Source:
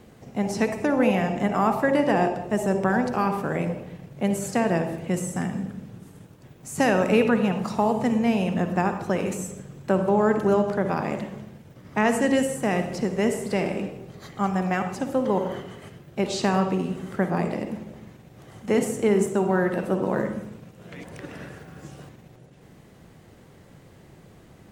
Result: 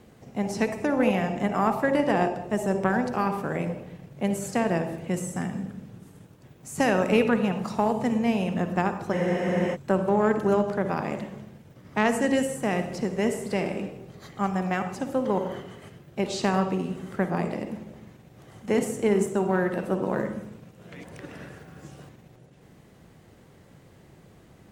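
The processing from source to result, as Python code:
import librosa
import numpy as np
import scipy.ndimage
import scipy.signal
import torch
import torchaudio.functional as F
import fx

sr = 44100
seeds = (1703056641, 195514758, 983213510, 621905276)

y = fx.cheby_harmonics(x, sr, harmonics=(3,), levels_db=(-21,), full_scale_db=-7.0)
y = fx.spec_freeze(y, sr, seeds[0], at_s=9.15, hold_s=0.59)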